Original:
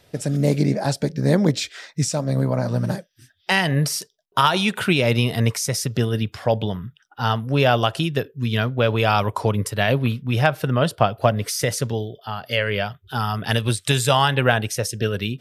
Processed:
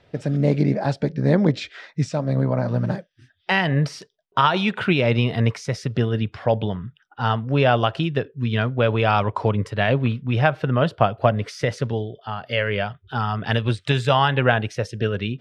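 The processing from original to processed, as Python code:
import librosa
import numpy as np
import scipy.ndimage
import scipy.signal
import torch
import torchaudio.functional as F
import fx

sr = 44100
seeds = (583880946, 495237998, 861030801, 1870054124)

y = scipy.signal.sosfilt(scipy.signal.butter(2, 3000.0, 'lowpass', fs=sr, output='sos'), x)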